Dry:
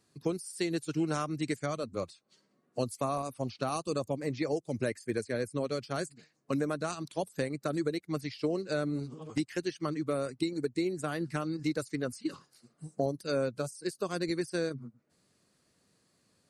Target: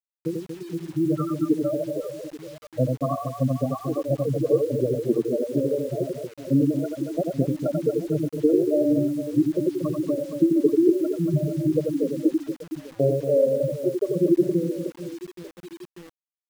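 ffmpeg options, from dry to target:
-filter_complex "[0:a]afftfilt=real='re*gte(hypot(re,im),0.141)':imag='im*gte(hypot(re,im),0.141)':win_size=1024:overlap=0.75,adynamicequalizer=threshold=0.00562:dfrequency=580:dqfactor=1.1:tfrequency=580:tqfactor=1.1:attack=5:release=100:ratio=0.375:range=2.5:mode=boostabove:tftype=bell,afftfilt=real='re*between(b*sr/4096,110,3100)':imag='im*between(b*sr/4096,110,3100)':win_size=4096:overlap=0.75,acrossover=split=280[s0][s1];[s0]dynaudnorm=f=150:g=17:m=3.76[s2];[s2][s1]amix=inputs=2:normalize=0,flanger=delay=0.3:depth=2.8:regen=-20:speed=0.28:shape=triangular,aecho=1:1:90|234|464.4|833|1423:0.631|0.398|0.251|0.158|0.1,acrusher=bits=8:mix=0:aa=0.000001,volume=2.37"

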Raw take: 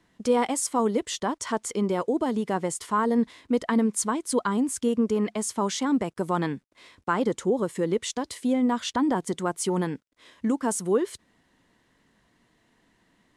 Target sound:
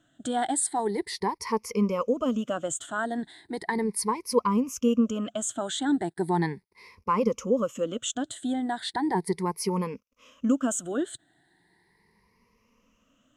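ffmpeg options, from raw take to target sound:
-af "afftfilt=real='re*pow(10,19/40*sin(2*PI*(0.85*log(max(b,1)*sr/1024/100)/log(2)-(0.37)*(pts-256)/sr)))':imag='im*pow(10,19/40*sin(2*PI*(0.85*log(max(b,1)*sr/1024/100)/log(2)-(0.37)*(pts-256)/sr)))':win_size=1024:overlap=0.75,volume=0.562"

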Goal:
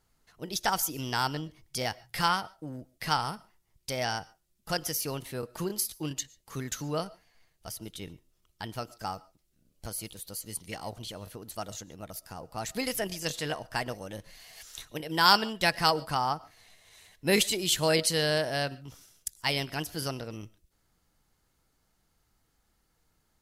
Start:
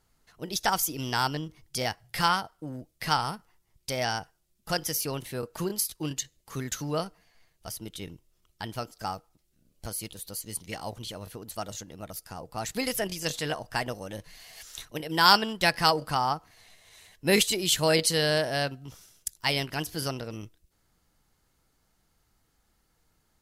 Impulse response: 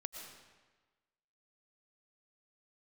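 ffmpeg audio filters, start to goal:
-filter_complex "[0:a]asplit=2[s0][s1];[1:a]atrim=start_sample=2205,atrim=end_sample=6615[s2];[s1][s2]afir=irnorm=-1:irlink=0,volume=0.299[s3];[s0][s3]amix=inputs=2:normalize=0,volume=0.668"

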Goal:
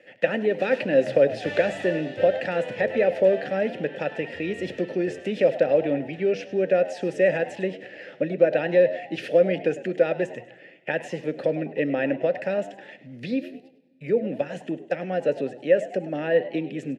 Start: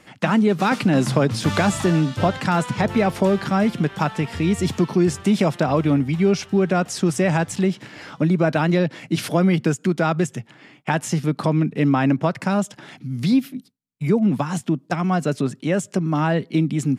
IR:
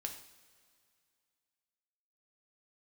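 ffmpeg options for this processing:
-filter_complex "[0:a]asplit=3[s0][s1][s2];[s0]bandpass=f=530:t=q:w=8,volume=1[s3];[s1]bandpass=f=1840:t=q:w=8,volume=0.501[s4];[s2]bandpass=f=2480:t=q:w=8,volume=0.355[s5];[s3][s4][s5]amix=inputs=3:normalize=0,asplit=4[s6][s7][s8][s9];[s7]adelay=102,afreqshift=88,volume=0.158[s10];[s8]adelay=204,afreqshift=176,volume=0.0569[s11];[s9]adelay=306,afreqshift=264,volume=0.0207[s12];[s6][s10][s11][s12]amix=inputs=4:normalize=0,asplit=2[s13][s14];[1:a]atrim=start_sample=2205,asetrate=48510,aresample=44100,lowshelf=f=420:g=10.5[s15];[s14][s15]afir=irnorm=-1:irlink=0,volume=0.376[s16];[s13][s16]amix=inputs=2:normalize=0,volume=2.11"

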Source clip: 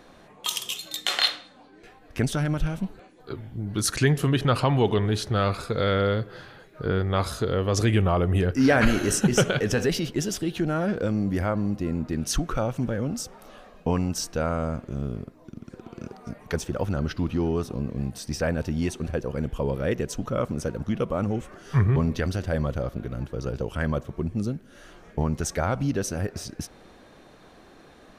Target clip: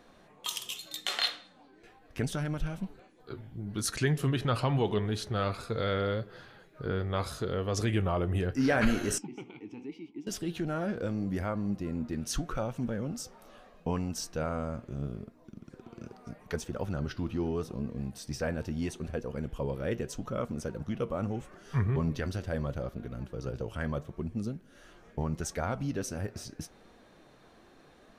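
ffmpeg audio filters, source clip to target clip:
-filter_complex "[0:a]asettb=1/sr,asplit=3[s0][s1][s2];[s0]atrim=end=9.184[s3];[s1]atrim=start=9.18:end=10.27,asetpts=PTS-STARTPTS,afade=t=in:d=0.004:c=qsin,afade=t=out:st=1.086:d=0.004:c=qsin,asplit=3[s4][s5][s6];[s4]bandpass=f=300:t=q:w=8,volume=1[s7];[s5]bandpass=f=870:t=q:w=8,volume=0.501[s8];[s6]bandpass=f=2240:t=q:w=8,volume=0.355[s9];[s7][s8][s9]amix=inputs=3:normalize=0[s10];[s2]atrim=start=10.266[s11];[s3][s10]acrossfade=d=0.004:c1=hsin:c2=qsin[s12];[s12][s11]acrossfade=d=0.004:c1=qsin:c2=hsin,flanger=delay=4.2:depth=4.7:regen=77:speed=0.78:shape=sinusoidal,volume=0.75"

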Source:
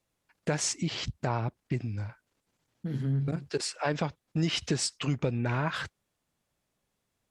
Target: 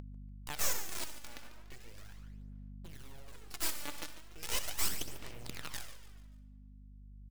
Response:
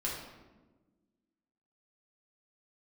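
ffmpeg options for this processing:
-filter_complex "[0:a]aderivative,crystalizer=i=2.5:c=0,bass=f=250:g=13,treble=f=4000:g=-13,acrusher=bits=7:dc=4:mix=0:aa=0.000001,highpass=f=110:p=1,asplit=2[s0][s1];[1:a]atrim=start_sample=2205,asetrate=66150,aresample=44100,adelay=63[s2];[s1][s2]afir=irnorm=-1:irlink=0,volume=0.422[s3];[s0][s3]amix=inputs=2:normalize=0,aeval=exprs='(tanh(63.1*val(0)+0.75)-tanh(0.75))/63.1':c=same,aeval=exprs='abs(val(0))':c=same,aeval=exprs='val(0)+0.000447*(sin(2*PI*50*n/s)+sin(2*PI*2*50*n/s)/2+sin(2*PI*3*50*n/s)/3+sin(2*PI*4*50*n/s)/4+sin(2*PI*5*50*n/s)/5)':c=same,acompressor=mode=upward:threshold=0.00251:ratio=2.5,aecho=1:1:145|290|435|580:0.211|0.0888|0.0373|0.0157,aphaser=in_gain=1:out_gain=1:delay=3.5:decay=0.5:speed=0.38:type=sinusoidal,volume=2.24"

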